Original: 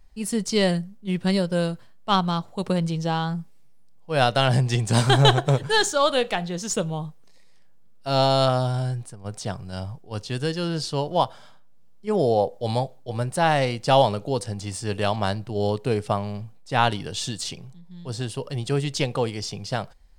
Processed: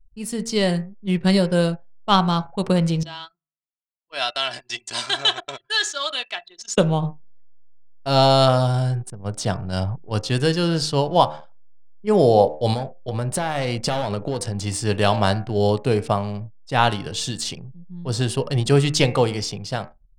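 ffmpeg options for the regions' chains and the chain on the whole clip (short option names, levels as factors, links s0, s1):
-filter_complex "[0:a]asettb=1/sr,asplit=3[s0][s1][s2];[s0]atrim=end=3.034[s3];[s1]atrim=start=3.03:end=6.78,asetpts=PTS-STARTPTS,afade=t=in:d=0.004:c=qsin,afade=t=out:st=3.746:d=0.004:c=qsin,lowpass=3800,aderivative,aecho=1:1:3:0.61,atrim=end_sample=165375[s4];[s2]atrim=start=6.776[s5];[s3][s4]acrossfade=d=0.004:c1=hsin:c2=qsin[s6];[s6][s5]acrossfade=d=0.004:c1=qsin:c2=hsin,asettb=1/sr,asplit=3[s7][s8][s9];[s7]atrim=end=12.734[s10];[s8]atrim=start=12.73:end=14.55,asetpts=PTS-STARTPTS,afade=t=in:d=0.004:c=qsin,afade=t=out:st=1.816:d=0.004:c=qsin,aeval=exprs='clip(val(0),-1,0.0708)':c=same,acompressor=threshold=0.0447:ratio=8:attack=3.2:release=140:knee=1:detection=peak[s11];[s9]atrim=start=14.546[s12];[s10][s11]acrossfade=d=0.004:c1=hsin:c2=qsin[s13];[s13][s12]acrossfade=d=0.004:c1=qsin:c2=hsin,bandreject=f=76.06:t=h:w=4,bandreject=f=152.12:t=h:w=4,bandreject=f=228.18:t=h:w=4,bandreject=f=304.24:t=h:w=4,bandreject=f=380.3:t=h:w=4,bandreject=f=456.36:t=h:w=4,bandreject=f=532.42:t=h:w=4,bandreject=f=608.48:t=h:w=4,bandreject=f=684.54:t=h:w=4,bandreject=f=760.6:t=h:w=4,bandreject=f=836.66:t=h:w=4,bandreject=f=912.72:t=h:w=4,bandreject=f=988.78:t=h:w=4,bandreject=f=1064.84:t=h:w=4,bandreject=f=1140.9:t=h:w=4,bandreject=f=1216.96:t=h:w=4,bandreject=f=1293.02:t=h:w=4,bandreject=f=1369.08:t=h:w=4,bandreject=f=1445.14:t=h:w=4,bandreject=f=1521.2:t=h:w=4,bandreject=f=1597.26:t=h:w=4,bandreject=f=1673.32:t=h:w=4,bandreject=f=1749.38:t=h:w=4,bandreject=f=1825.44:t=h:w=4,bandreject=f=1901.5:t=h:w=4,bandreject=f=1977.56:t=h:w=4,bandreject=f=2053.62:t=h:w=4,bandreject=f=2129.68:t=h:w=4,bandreject=f=2205.74:t=h:w=4,bandreject=f=2281.8:t=h:w=4,bandreject=f=2357.86:t=h:w=4,bandreject=f=2433.92:t=h:w=4,bandreject=f=2509.98:t=h:w=4,bandreject=f=2586.04:t=h:w=4,bandreject=f=2662.1:t=h:w=4,bandreject=f=2738.16:t=h:w=4,anlmdn=0.0631,dynaudnorm=f=150:g=13:m=3.76,volume=0.891"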